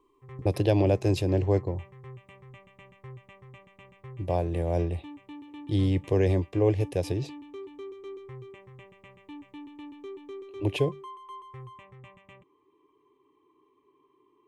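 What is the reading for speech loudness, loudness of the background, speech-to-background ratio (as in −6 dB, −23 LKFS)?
−27.0 LKFS, −46.0 LKFS, 19.0 dB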